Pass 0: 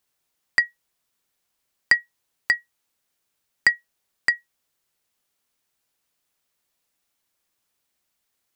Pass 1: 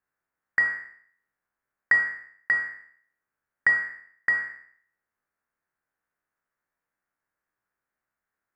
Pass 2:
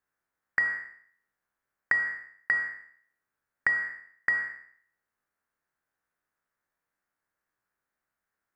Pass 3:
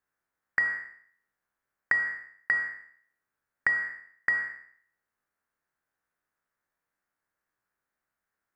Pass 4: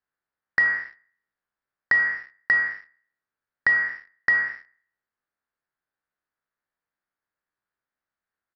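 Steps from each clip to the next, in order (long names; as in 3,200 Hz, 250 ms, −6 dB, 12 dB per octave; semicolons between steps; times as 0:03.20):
peak hold with a decay on every bin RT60 0.60 s; high shelf with overshoot 2,400 Hz −13.5 dB, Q 3; level −7.5 dB
downward compressor, threshold −22 dBFS, peak gain reduction 6.5 dB
no processing that can be heard
leveller curve on the samples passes 2; downsampling to 11,025 Hz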